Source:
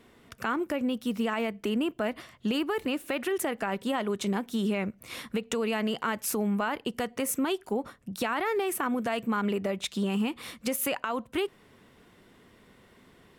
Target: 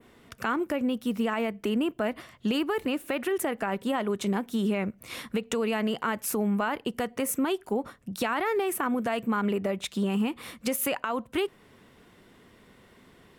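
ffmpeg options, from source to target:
ffmpeg -i in.wav -af "adynamicequalizer=threshold=0.00355:dfrequency=4800:dqfactor=0.71:tfrequency=4800:tqfactor=0.71:attack=5:release=100:ratio=0.375:range=2.5:mode=cutabove:tftype=bell,volume=1.5dB" out.wav

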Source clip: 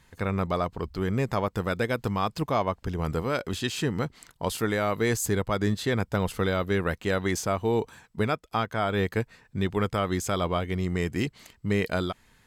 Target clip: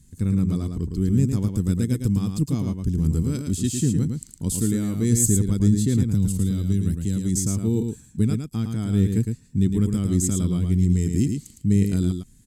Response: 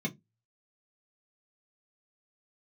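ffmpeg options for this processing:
-filter_complex "[0:a]firequalizer=gain_entry='entry(250,0);entry(610,-29);entry(7900,4);entry(14000,-7)':delay=0.05:min_phase=1,asettb=1/sr,asplit=3[link_01][link_02][link_03];[link_01]atrim=end=6.024[link_04];[link_02]atrim=start=6.02:end=7.39,asetpts=PTS-STARTPTS,afade=type=in:duration=0.004:curve=qsin,afade=type=out:start_time=1.366:duration=0.004:curve=qsin,acrossover=split=240|3000[link_05][link_06][link_07];[link_06]acompressor=threshold=-46dB:ratio=3[link_08];[link_05][link_08][link_07]amix=inputs=3:normalize=0[link_09];[link_03]atrim=start=7.386[link_10];[link_04][link_09]acrossfade=duration=0.004:curve1=hsin:curve2=qsin[link_11];[link_11][link_10]acrossfade=duration=0.004:curve1=qsin:curve2=hsin,asplit=2[link_12][link_13];[link_13]aecho=0:1:110:0.531[link_14];[link_12][link_14]amix=inputs=2:normalize=0,volume=8.5dB"

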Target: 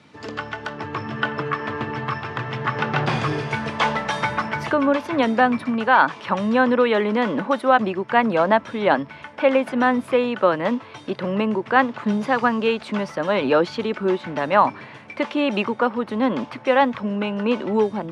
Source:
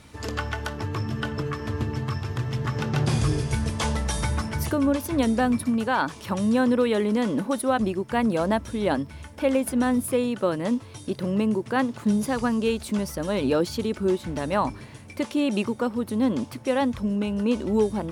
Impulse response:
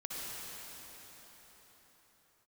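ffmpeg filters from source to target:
-filter_complex "[0:a]lowpass=4300,acrossover=split=600|3000[link_01][link_02][link_03];[link_02]dynaudnorm=framelen=610:gausssize=3:maxgain=11.5dB[link_04];[link_01][link_04][link_03]amix=inputs=3:normalize=0,highpass=frequency=130:width=0.5412,highpass=frequency=130:width=1.3066"

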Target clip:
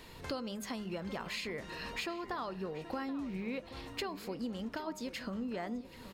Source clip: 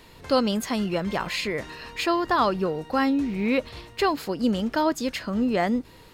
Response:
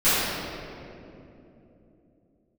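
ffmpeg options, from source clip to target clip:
-filter_complex "[0:a]acompressor=threshold=-35dB:ratio=6,bandreject=frequency=102.7:width_type=h:width=4,bandreject=frequency=205.4:width_type=h:width=4,bandreject=frequency=308.1:width_type=h:width=4,bandreject=frequency=410.8:width_type=h:width=4,bandreject=frequency=513.5:width_type=h:width=4,bandreject=frequency=616.2:width_type=h:width=4,bandreject=frequency=718.9:width_type=h:width=4,bandreject=frequency=821.6:width_type=h:width=4,bandreject=frequency=924.3:width_type=h:width=4,bandreject=frequency=1027:width_type=h:width=4,bandreject=frequency=1129.7:width_type=h:width=4,bandreject=frequency=1232.4:width_type=h:width=4,bandreject=frequency=1335.1:width_type=h:width=4,bandreject=frequency=1437.8:width_type=h:width=4,asplit=2[link_01][link_02];[link_02]adelay=779,lowpass=frequency=3100:poles=1,volume=-14dB,asplit=2[link_03][link_04];[link_04]adelay=779,lowpass=frequency=3100:poles=1,volume=0.51,asplit=2[link_05][link_06];[link_06]adelay=779,lowpass=frequency=3100:poles=1,volume=0.51,asplit=2[link_07][link_08];[link_08]adelay=779,lowpass=frequency=3100:poles=1,volume=0.51,asplit=2[link_09][link_10];[link_10]adelay=779,lowpass=frequency=3100:poles=1,volume=0.51[link_11];[link_03][link_05][link_07][link_09][link_11]amix=inputs=5:normalize=0[link_12];[link_01][link_12]amix=inputs=2:normalize=0,volume=-2dB"

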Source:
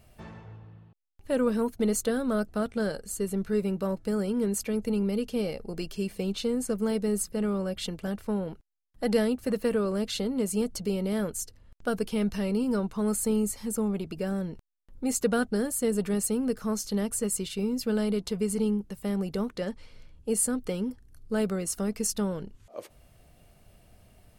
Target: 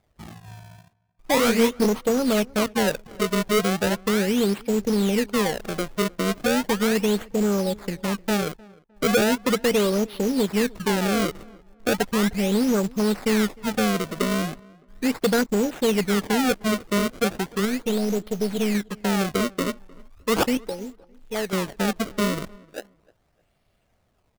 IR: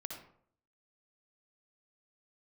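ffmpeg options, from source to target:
-filter_complex "[0:a]asettb=1/sr,asplit=3[link_01][link_02][link_03];[link_01]atrim=end=17.654[link_04];[link_02]atrim=start=17.65:end=18.75,asetpts=PTS-STARTPTS,afade=type=in:duration=0.004:curve=qsin,afade=type=out:start_time=1.096:duration=0.004:curve=qsin,aeval=exprs='if(lt(val(0),0),0.447*val(0),val(0))':channel_layout=same[link_05];[link_03]atrim=start=18.746[link_06];[link_04][link_05]acrossfade=duration=0.004:curve1=hsin:curve2=qsin[link_07];[link_07][link_06]acrossfade=duration=0.004:curve1=qsin:curve2=hsin,afwtdn=0.0224,asettb=1/sr,asplit=3[link_08][link_09][link_10];[link_08]atrim=end=20.574[link_11];[link_09]atrim=start=20.57:end=21.53,asetpts=PTS-STARTPTS,afade=type=in:duration=0.004:curve=qsin,afade=type=out:start_time=0.956:duration=0.004:curve=qsin,equalizer=frequency=140:width=0.38:gain=-14[link_12];[link_10]atrim=start=21.526[link_13];[link_11][link_12]acrossfade=duration=0.004:curve1=hsin:curve2=qsin[link_14];[link_14][link_13]acrossfade=duration=0.004:curve1=qsin:curve2=hsin,acrusher=samples=30:mix=1:aa=0.000001:lfo=1:lforange=48:lforate=0.37,asoftclip=type=hard:threshold=-23dB,lowshelf=frequency=180:gain=-6,acrusher=bits=4:mode=log:mix=0:aa=0.000001,asettb=1/sr,asplit=3[link_15][link_16][link_17];[link_15]atrim=end=1.344[link_18];[link_16]atrim=start=1.34:end=1.86,asetpts=PTS-STARTPTS,afade=type=in:duration=0.004:curve=qsin,afade=type=out:start_time=0.516:duration=0.004:curve=qsin,asplit=2[link_19][link_20];[link_20]adelay=26,volume=-3dB[link_21];[link_19][link_21]amix=inputs=2:normalize=0,atrim=end_sample=22932[link_22];[link_17]atrim=start=1.856[link_23];[link_18][link_22]acrossfade=duration=0.004:curve1=hsin:curve2=qsin[link_24];[link_24][link_23]acrossfade=duration=0.004:curve1=qsin:curve2=hsin,asplit=2[link_25][link_26];[link_26]adelay=306,lowpass=frequency=1900:poles=1,volume=-24dB,asplit=2[link_27][link_28];[link_28]adelay=306,lowpass=frequency=1900:poles=1,volume=0.31[link_29];[link_25][link_27][link_29]amix=inputs=3:normalize=0,volume=8.5dB"

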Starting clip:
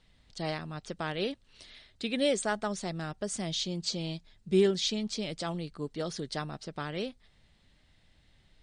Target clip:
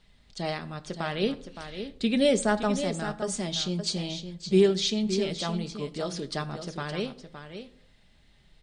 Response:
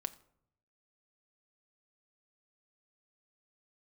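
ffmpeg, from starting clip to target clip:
-filter_complex "[0:a]asettb=1/sr,asplit=3[link_01][link_02][link_03];[link_01]atrim=end=1.234[link_04];[link_02]atrim=start=1.23:end=2.81,asetpts=PTS-STARTPTS,afade=type=in:duration=0.004:curve=qsin,afade=type=out:start_time=1.576:duration=0.004:curve=qsin,lowshelf=frequency=250:gain=10[link_05];[link_03]atrim=start=2.806[link_06];[link_04][link_05]acrossfade=duration=0.004:curve1=hsin:curve2=qsin[link_07];[link_07][link_06]acrossfade=duration=0.004:curve1=qsin:curve2=hsin,aecho=1:1:566:0.335[link_08];[1:a]atrim=start_sample=2205[link_09];[link_08][link_09]afir=irnorm=-1:irlink=0,volume=4dB"

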